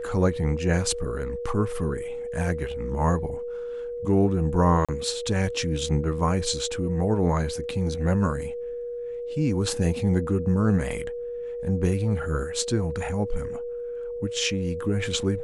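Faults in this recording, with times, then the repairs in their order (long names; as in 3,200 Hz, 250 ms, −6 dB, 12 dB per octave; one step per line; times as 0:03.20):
whistle 480 Hz −30 dBFS
0:04.85–0:04.89: drop-out 36 ms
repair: notch filter 480 Hz, Q 30
repair the gap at 0:04.85, 36 ms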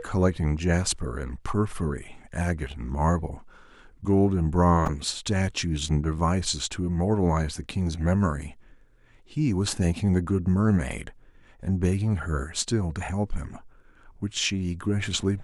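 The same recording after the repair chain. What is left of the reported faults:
none of them is left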